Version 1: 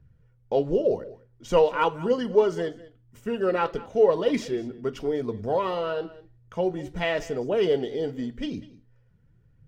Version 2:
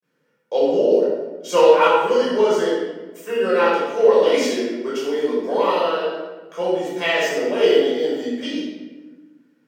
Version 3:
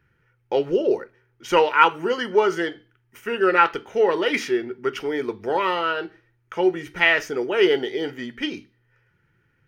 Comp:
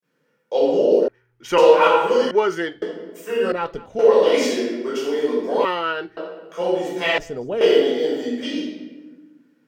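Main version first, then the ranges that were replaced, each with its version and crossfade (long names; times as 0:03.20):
2
0:01.08–0:01.58: punch in from 3
0:02.31–0:02.82: punch in from 3
0:03.52–0:03.99: punch in from 1
0:05.65–0:06.17: punch in from 3
0:07.18–0:07.61: punch in from 1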